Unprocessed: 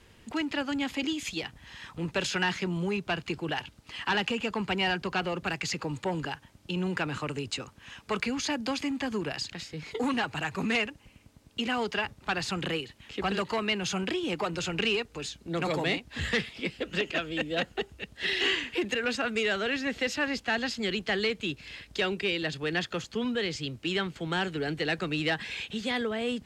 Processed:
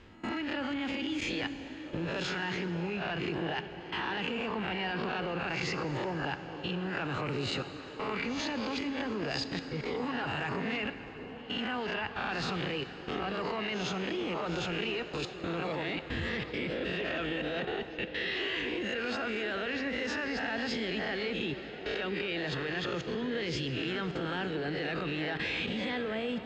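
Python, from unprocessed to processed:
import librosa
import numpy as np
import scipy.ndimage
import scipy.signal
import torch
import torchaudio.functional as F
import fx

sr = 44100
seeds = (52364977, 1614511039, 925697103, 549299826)

p1 = fx.spec_swells(x, sr, rise_s=0.53)
p2 = fx.air_absorb(p1, sr, metres=160.0)
p3 = fx.level_steps(p2, sr, step_db=20)
p4 = p3 + fx.echo_stepped(p3, sr, ms=676, hz=350.0, octaves=0.7, feedback_pct=70, wet_db=-8.0, dry=0)
p5 = fx.rev_plate(p4, sr, seeds[0], rt60_s=4.2, hf_ratio=0.85, predelay_ms=0, drr_db=10.0)
y = p5 * librosa.db_to_amplitude(5.5)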